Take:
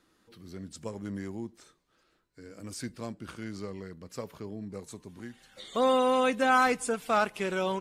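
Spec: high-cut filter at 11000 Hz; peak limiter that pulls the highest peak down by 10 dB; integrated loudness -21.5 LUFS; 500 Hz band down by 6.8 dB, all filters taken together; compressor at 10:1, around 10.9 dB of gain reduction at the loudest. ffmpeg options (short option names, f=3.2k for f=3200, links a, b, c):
-af "lowpass=11k,equalizer=f=500:t=o:g=-7.5,acompressor=threshold=-32dB:ratio=10,volume=23dB,alimiter=limit=-11dB:level=0:latency=1"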